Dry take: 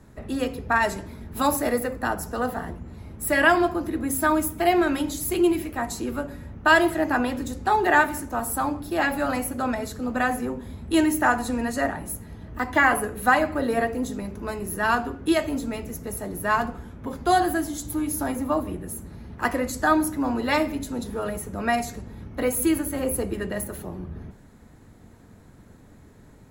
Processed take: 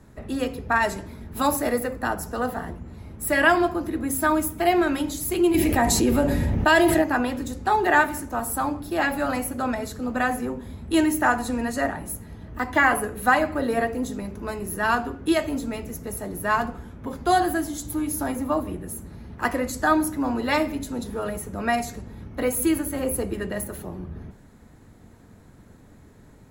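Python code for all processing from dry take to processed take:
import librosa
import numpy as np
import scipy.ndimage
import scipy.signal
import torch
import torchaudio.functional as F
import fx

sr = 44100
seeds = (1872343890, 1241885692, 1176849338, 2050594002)

y = fx.chain(x, sr, fx.peak_eq(hz=1400.0, db=-10.0, octaves=0.22),
    fx.notch(hz=1100.0, q=6.8),
    fx.env_flatten(amount_pct=70), at=(5.54, 7.02))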